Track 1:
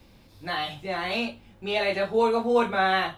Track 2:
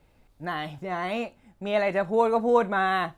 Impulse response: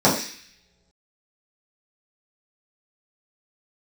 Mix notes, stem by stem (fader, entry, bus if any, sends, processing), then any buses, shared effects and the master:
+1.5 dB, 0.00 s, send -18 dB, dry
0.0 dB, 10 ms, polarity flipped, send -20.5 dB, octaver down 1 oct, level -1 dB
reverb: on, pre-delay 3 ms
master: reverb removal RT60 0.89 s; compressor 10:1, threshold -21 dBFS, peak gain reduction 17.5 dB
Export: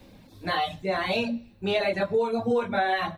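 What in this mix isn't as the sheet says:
stem 2 0.0 dB -> -10.0 dB; reverb return -7.0 dB

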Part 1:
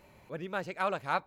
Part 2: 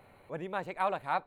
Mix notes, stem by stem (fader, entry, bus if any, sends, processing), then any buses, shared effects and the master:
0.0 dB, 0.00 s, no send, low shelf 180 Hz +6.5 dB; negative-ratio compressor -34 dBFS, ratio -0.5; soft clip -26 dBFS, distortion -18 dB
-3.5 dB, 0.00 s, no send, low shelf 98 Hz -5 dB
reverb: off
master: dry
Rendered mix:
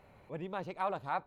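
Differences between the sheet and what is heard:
stem 1 0.0 dB -> -10.5 dB; master: extra high shelf 5400 Hz -7.5 dB

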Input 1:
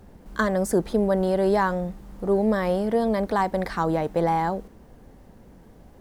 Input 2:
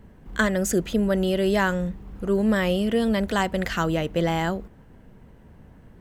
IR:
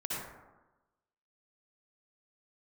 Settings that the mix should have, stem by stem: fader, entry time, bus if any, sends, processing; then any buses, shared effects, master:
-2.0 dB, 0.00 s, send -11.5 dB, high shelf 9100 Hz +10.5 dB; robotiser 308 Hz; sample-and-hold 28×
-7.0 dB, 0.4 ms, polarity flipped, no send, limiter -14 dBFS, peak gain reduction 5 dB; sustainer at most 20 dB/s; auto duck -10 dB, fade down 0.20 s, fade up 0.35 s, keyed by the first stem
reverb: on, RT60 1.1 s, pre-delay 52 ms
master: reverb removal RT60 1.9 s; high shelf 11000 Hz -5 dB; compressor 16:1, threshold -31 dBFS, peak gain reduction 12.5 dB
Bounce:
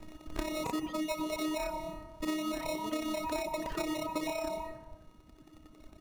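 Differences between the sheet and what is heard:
stem 1: send -11.5 dB -> -1 dB; stem 2: polarity flipped

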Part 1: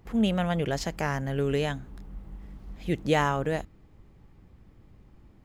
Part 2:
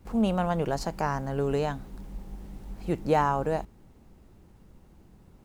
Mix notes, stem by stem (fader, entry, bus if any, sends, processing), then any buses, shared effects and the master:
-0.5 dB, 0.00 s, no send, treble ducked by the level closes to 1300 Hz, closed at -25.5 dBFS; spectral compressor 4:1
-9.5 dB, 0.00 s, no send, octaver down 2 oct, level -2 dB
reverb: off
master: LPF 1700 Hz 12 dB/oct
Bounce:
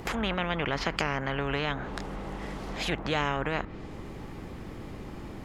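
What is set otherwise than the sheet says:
stem 2 -9.5 dB -> -15.5 dB; master: missing LPF 1700 Hz 12 dB/oct

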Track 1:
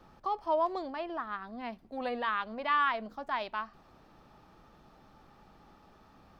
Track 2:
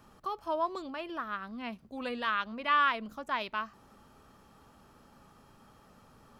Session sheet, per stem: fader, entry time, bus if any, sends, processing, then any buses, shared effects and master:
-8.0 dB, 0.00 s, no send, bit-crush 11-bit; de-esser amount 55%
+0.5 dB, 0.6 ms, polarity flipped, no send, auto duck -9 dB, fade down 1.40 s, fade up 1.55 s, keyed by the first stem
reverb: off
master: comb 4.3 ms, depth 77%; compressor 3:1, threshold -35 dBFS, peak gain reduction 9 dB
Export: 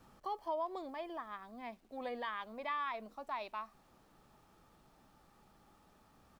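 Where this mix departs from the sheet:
stem 2 +0.5 dB -> -6.5 dB; master: missing comb 4.3 ms, depth 77%

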